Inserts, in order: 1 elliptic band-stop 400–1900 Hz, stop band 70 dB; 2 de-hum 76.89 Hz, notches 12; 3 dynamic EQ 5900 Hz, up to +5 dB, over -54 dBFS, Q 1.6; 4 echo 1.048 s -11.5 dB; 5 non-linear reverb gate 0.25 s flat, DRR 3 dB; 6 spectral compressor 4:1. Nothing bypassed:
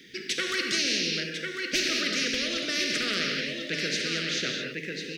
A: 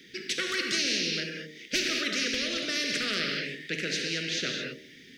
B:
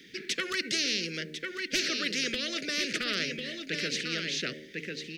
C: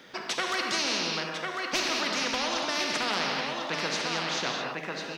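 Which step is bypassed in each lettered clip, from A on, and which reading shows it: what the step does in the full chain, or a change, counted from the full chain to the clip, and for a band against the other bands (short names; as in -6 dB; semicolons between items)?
4, loudness change -1.5 LU; 5, momentary loudness spread change +1 LU; 1, 1 kHz band +13.5 dB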